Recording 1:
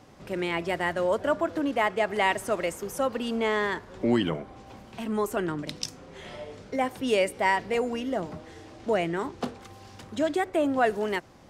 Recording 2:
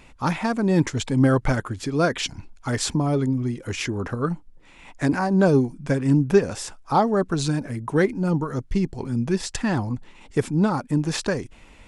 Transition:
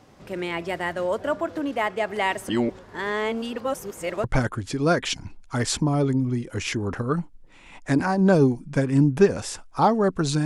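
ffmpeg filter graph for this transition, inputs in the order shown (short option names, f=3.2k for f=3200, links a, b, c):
-filter_complex "[0:a]apad=whole_dur=10.45,atrim=end=10.45,asplit=2[a][b];[a]atrim=end=2.492[c];[b]atrim=start=2.488:end=4.242,asetpts=PTS-STARTPTS,areverse[d];[1:a]atrim=start=1.368:end=7.58[e];[c][d]acrossfade=d=0.004:c1=hsin:c2=hsin[f];[f][e]acrossfade=d=0.004:c1=hsin:c2=hsin"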